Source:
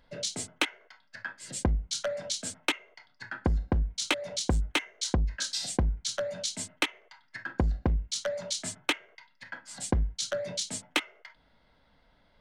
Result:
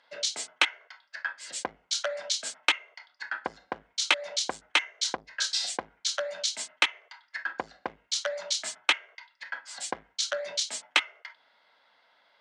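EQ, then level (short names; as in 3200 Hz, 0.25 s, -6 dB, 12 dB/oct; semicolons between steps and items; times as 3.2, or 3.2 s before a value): BPF 780–6300 Hz; +5.5 dB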